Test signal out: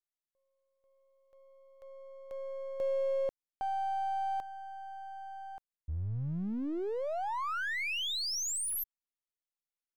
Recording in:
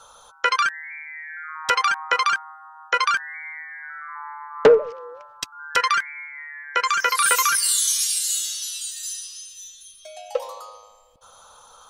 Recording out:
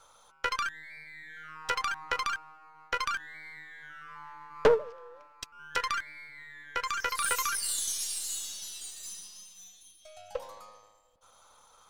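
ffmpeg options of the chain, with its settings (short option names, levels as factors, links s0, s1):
-af "aeval=exprs='if(lt(val(0),0),0.447*val(0),val(0))':c=same,aeval=exprs='0.668*(cos(1*acos(clip(val(0)/0.668,-1,1)))-cos(1*PI/2))+0.0668*(cos(3*acos(clip(val(0)/0.668,-1,1)))-cos(3*PI/2))+0.0237*(cos(8*acos(clip(val(0)/0.668,-1,1)))-cos(8*PI/2))':c=same,volume=0.562"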